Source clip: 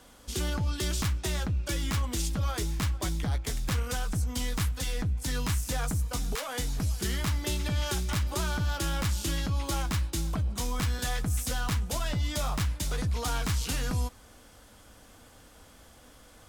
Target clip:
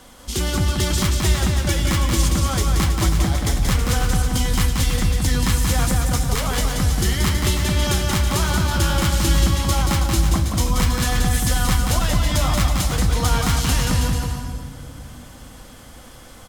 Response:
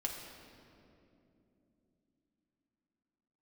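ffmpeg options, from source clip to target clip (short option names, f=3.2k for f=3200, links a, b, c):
-filter_complex "[0:a]aecho=1:1:180|324|439.2|531.4|605.1:0.631|0.398|0.251|0.158|0.1,asplit=2[a][b];[1:a]atrim=start_sample=2205[c];[b][c]afir=irnorm=-1:irlink=0,volume=-6.5dB[d];[a][d]amix=inputs=2:normalize=0,volume=6dB"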